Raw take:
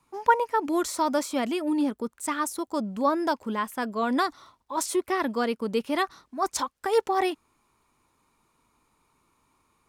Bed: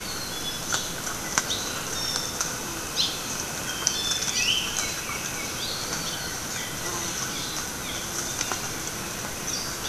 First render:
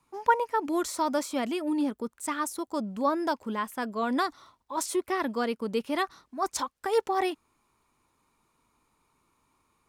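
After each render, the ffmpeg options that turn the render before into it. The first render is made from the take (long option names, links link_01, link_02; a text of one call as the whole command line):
ffmpeg -i in.wav -af "volume=-2.5dB" out.wav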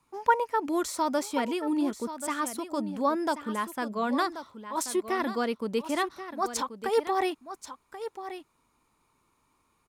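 ffmpeg -i in.wav -af "aecho=1:1:1083:0.266" out.wav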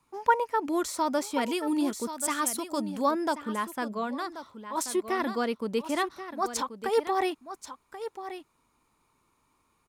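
ffmpeg -i in.wav -filter_complex "[0:a]asettb=1/sr,asplit=3[link_01][link_02][link_03];[link_01]atrim=end=1.414[link_04];[link_02]atrim=start=1.41:end=3.11,asetpts=PTS-STARTPTS,afade=type=in:duration=0.004:curve=qsin,afade=type=out:start_time=1.696:duration=0.004:curve=qsin,highshelf=frequency=3300:gain=8.5[link_05];[link_03]atrim=start=3.106[link_06];[link_04][link_05]acrossfade=duration=0.004:curve1=hsin:curve2=qsin[link_07];[link_07][link_06]acrossfade=duration=0.004:curve1=qsin:curve2=hsin,asplit=3[link_08][link_09][link_10];[link_08]atrim=end=4.18,asetpts=PTS-STARTPTS,afade=type=out:start_time=3.92:duration=0.26:silence=0.375837[link_11];[link_09]atrim=start=4.18:end=4.19,asetpts=PTS-STARTPTS,volume=-8.5dB[link_12];[link_10]atrim=start=4.19,asetpts=PTS-STARTPTS,afade=type=in:duration=0.26:silence=0.375837[link_13];[link_11][link_12][link_13]concat=n=3:v=0:a=1" out.wav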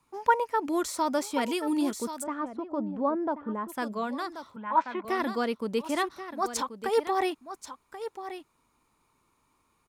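ffmpeg -i in.wav -filter_complex "[0:a]asplit=3[link_01][link_02][link_03];[link_01]afade=type=out:start_time=2.22:duration=0.02[link_04];[link_02]lowpass=1000,afade=type=in:start_time=2.22:duration=0.02,afade=type=out:start_time=3.68:duration=0.02[link_05];[link_03]afade=type=in:start_time=3.68:duration=0.02[link_06];[link_04][link_05][link_06]amix=inputs=3:normalize=0,asettb=1/sr,asplit=3[link_07][link_08][link_09];[link_07]atrim=end=4.564[link_10];[link_08]atrim=start=4.56:end=5.05,asetpts=PTS-STARTPTS,afade=type=in:duration=0.004:curve=qsin,afade=type=out:start_time=0.486:duration=0.004:curve=qsin,highpass=frequency=140:width=0.5412,highpass=frequency=140:width=1.3066,equalizer=frequency=200:width_type=q:width=4:gain=5,equalizer=frequency=380:width_type=q:width=4:gain=-9,equalizer=frequency=620:width_type=q:width=4:gain=3,equalizer=frequency=920:width_type=q:width=4:gain=10,equalizer=frequency=1500:width_type=q:width=4:gain=9,equalizer=frequency=2400:width_type=q:width=4:gain=5,lowpass=frequency=2800:width=0.5412,lowpass=frequency=2800:width=1.3066[link_11];[link_09]atrim=start=5.046[link_12];[link_10][link_11]acrossfade=duration=0.004:curve1=hsin:curve2=qsin[link_13];[link_13][link_12]acrossfade=duration=0.004:curve1=qsin:curve2=hsin" out.wav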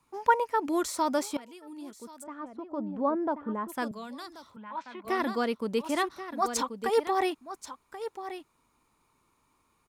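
ffmpeg -i in.wav -filter_complex "[0:a]asettb=1/sr,asplit=3[link_01][link_02][link_03];[link_01]atrim=end=3.914[link_04];[link_02]atrim=start=3.91:end=5.07,asetpts=PTS-STARTPTS,afade=type=in:duration=0.004:curve=qsin,afade=type=out:start_time=1.156:duration=0.004:curve=qsin,acrossover=split=150|3000[link_05][link_06][link_07];[link_06]acompressor=threshold=-58dB:ratio=1.5:attack=3.2:release=140:knee=2.83:detection=peak[link_08];[link_05][link_08][link_07]amix=inputs=3:normalize=0[link_09];[link_03]atrim=start=5.066[link_10];[link_04][link_09]acrossfade=duration=0.004:curve1=hsin:curve2=qsin[link_11];[link_11][link_10]acrossfade=duration=0.004:curve1=qsin:curve2=hsin,asettb=1/sr,asplit=3[link_12][link_13][link_14];[link_12]atrim=end=6.314[link_15];[link_13]atrim=start=6.31:end=6.9,asetpts=PTS-STARTPTS,afade=type=in:duration=0.004:curve=qsin,afade=type=out:start_time=0.586:duration=0.004:curve=qsin,aecho=1:1:4.2:0.55,atrim=end_sample=26019[link_16];[link_14]atrim=start=6.896[link_17];[link_15][link_16]acrossfade=duration=0.004:curve1=hsin:curve2=qsin[link_18];[link_18][link_17]acrossfade=duration=0.004:curve1=qsin:curve2=hsin,asplit=2[link_19][link_20];[link_19]atrim=end=1.37,asetpts=PTS-STARTPTS,afade=type=out:start_time=1.366:duration=0.004:curve=hsin:silence=0.105925[link_21];[link_20]atrim=start=1.37,asetpts=PTS-STARTPTS,afade=type=in:duration=1.72:curve=qua:silence=0.105925[link_22];[link_21][link_22]concat=n=2:v=0:a=1" out.wav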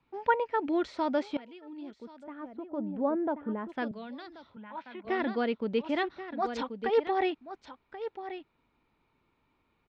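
ffmpeg -i in.wav -af "lowpass=frequency=3600:width=0.5412,lowpass=frequency=3600:width=1.3066,equalizer=frequency=1100:width_type=o:width=0.4:gain=-9.5" out.wav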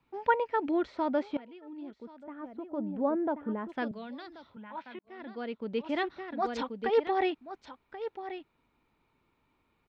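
ffmpeg -i in.wav -filter_complex "[0:a]asettb=1/sr,asplit=3[link_01][link_02][link_03];[link_01]atrim=end=0.714[link_04];[link_02]atrim=start=0.71:end=2.44,asetpts=PTS-STARTPTS,afade=type=in:duration=0.004:curve=qsin,afade=type=out:start_time=1.726:duration=0.004:curve=qsin,aemphasis=mode=reproduction:type=75kf[link_05];[link_03]atrim=start=2.436[link_06];[link_04][link_05]acrossfade=duration=0.004:curve1=hsin:curve2=qsin[link_07];[link_07][link_06]acrossfade=duration=0.004:curve1=qsin:curve2=hsin,asplit=2[link_08][link_09];[link_08]atrim=end=4.99,asetpts=PTS-STARTPTS,afade=type=out:start_time=4.986:duration=0.004:curve=hsin[link_10];[link_09]atrim=start=4.99,asetpts=PTS-STARTPTS,afade=type=in:duration=1.14[link_11];[link_10][link_11]concat=n=2:v=0:a=1" out.wav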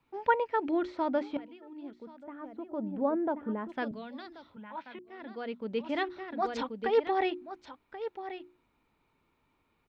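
ffmpeg -i in.wav -af "bandreject=frequency=60:width_type=h:width=6,bandreject=frequency=120:width_type=h:width=6,bandreject=frequency=180:width_type=h:width=6,bandreject=frequency=240:width_type=h:width=6,bandreject=frequency=300:width_type=h:width=6,bandreject=frequency=360:width_type=h:width=6" out.wav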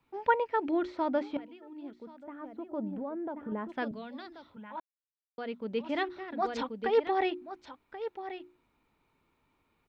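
ffmpeg -i in.wav -filter_complex "[0:a]asettb=1/sr,asplit=3[link_01][link_02][link_03];[link_01]atrim=end=2.934[link_04];[link_02]atrim=start=2.93:end=3.52,asetpts=PTS-STARTPTS,afade=type=in:duration=0.004:curve=qsin,afade=type=out:start_time=0.586:duration=0.004:curve=qsin,acompressor=threshold=-34dB:ratio=6:attack=3.2:release=140:knee=1:detection=peak[link_05];[link_03]atrim=start=3.516[link_06];[link_04][link_05]acrossfade=duration=0.004:curve1=hsin:curve2=qsin[link_07];[link_07][link_06]acrossfade=duration=0.004:curve1=qsin:curve2=hsin,asplit=3[link_08][link_09][link_10];[link_08]atrim=end=4.8,asetpts=PTS-STARTPTS,afade=type=out:start_time=4.796:duration=0.004:curve=hsin[link_11];[link_09]atrim=start=4.8:end=5.38,asetpts=PTS-STARTPTS,volume=0[link_12];[link_10]atrim=start=5.38,asetpts=PTS-STARTPTS,afade=type=in:duration=0.004:curve=hsin[link_13];[link_11][link_12][link_13]concat=n=3:v=0:a=1" out.wav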